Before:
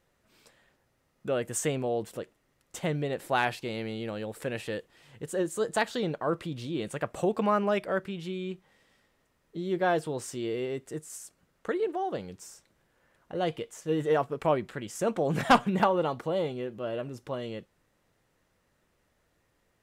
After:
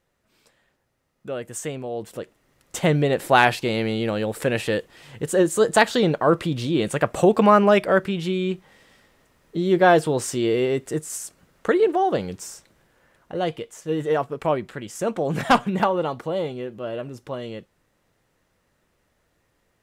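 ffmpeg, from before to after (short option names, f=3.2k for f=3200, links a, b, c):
-af "volume=11dB,afade=t=in:st=1.9:d=0.99:silence=0.251189,afade=t=out:st=12.34:d=1.23:silence=0.421697"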